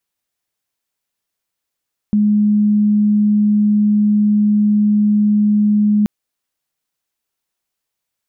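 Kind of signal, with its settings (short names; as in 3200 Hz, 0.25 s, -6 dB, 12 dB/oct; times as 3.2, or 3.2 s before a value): tone sine 209 Hz -10 dBFS 3.93 s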